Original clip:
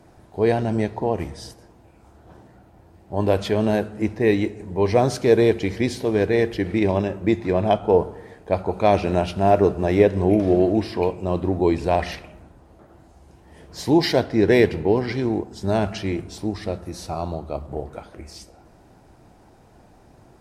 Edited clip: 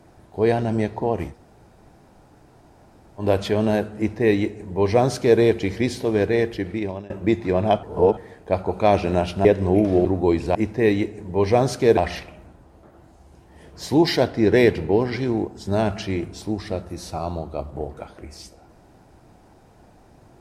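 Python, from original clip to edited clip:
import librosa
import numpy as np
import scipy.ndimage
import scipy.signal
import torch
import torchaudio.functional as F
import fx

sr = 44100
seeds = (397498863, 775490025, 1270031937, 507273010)

y = fx.edit(x, sr, fx.room_tone_fill(start_s=1.32, length_s=1.9, crossfade_s=0.1),
    fx.duplicate(start_s=3.97, length_s=1.42, to_s=11.93),
    fx.fade_out_to(start_s=6.08, length_s=1.02, curve='qsin', floor_db=-20.5),
    fx.reverse_span(start_s=7.83, length_s=0.34),
    fx.cut(start_s=9.45, length_s=0.55),
    fx.cut(start_s=10.6, length_s=0.83), tone=tone)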